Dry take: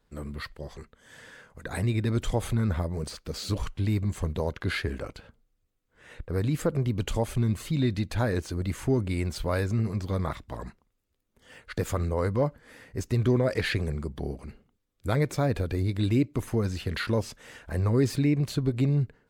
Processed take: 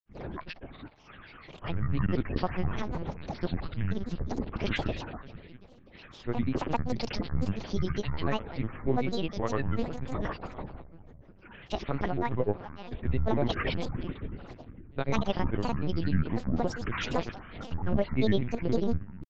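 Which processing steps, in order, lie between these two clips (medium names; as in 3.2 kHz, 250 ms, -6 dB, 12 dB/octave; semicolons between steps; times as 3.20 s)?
peaking EQ 2.6 kHz +3 dB 0.77 oct; on a send: two-band feedback delay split 390 Hz, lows 456 ms, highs 202 ms, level -14.5 dB; on the sum: monotone LPC vocoder at 8 kHz 130 Hz; granulator 100 ms, grains 20 per s, pitch spread up and down by 12 st; trim -1 dB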